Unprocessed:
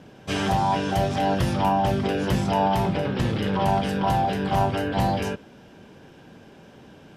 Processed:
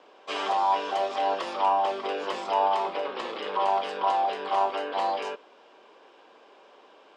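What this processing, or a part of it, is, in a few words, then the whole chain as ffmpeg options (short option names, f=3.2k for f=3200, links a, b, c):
phone speaker on a table: -af "highpass=f=410:w=0.5412,highpass=f=410:w=1.3066,equalizer=f=1.1k:t=q:w=4:g=9,equalizer=f=1.6k:t=q:w=4:g=-5,equalizer=f=5.9k:t=q:w=4:g=-7,lowpass=f=6.8k:w=0.5412,lowpass=f=6.8k:w=1.3066,volume=-2.5dB"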